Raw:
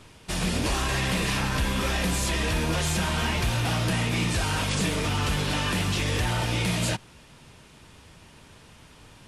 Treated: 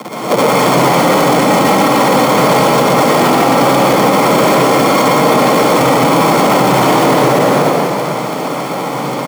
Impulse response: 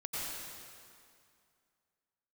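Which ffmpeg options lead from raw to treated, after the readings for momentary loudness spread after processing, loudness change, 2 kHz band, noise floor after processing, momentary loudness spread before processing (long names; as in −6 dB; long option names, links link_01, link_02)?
7 LU, +15.5 dB, +12.5 dB, −19 dBFS, 1 LU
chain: -filter_complex "[0:a]highpass=frequency=400:width_type=q:width=0.5412,highpass=frequency=400:width_type=q:width=1.307,lowpass=frequency=3400:width_type=q:width=0.5176,lowpass=frequency=3400:width_type=q:width=0.7071,lowpass=frequency=3400:width_type=q:width=1.932,afreqshift=310,flanger=delay=0.1:depth=7.5:regen=-58:speed=0.54:shape=triangular,crystalizer=i=10:c=0,aecho=1:1:3.8:0.66,tremolo=f=15:d=0.85,acrusher=samples=41:mix=1:aa=0.000001,aeval=exprs='val(0)*sin(2*PI*410*n/s)':channel_layout=same,afreqshift=120,aecho=1:1:118:0.501[link_01];[1:a]atrim=start_sample=2205[link_02];[link_01][link_02]afir=irnorm=-1:irlink=0,alimiter=level_in=33dB:limit=-1dB:release=50:level=0:latency=1,volume=-1dB"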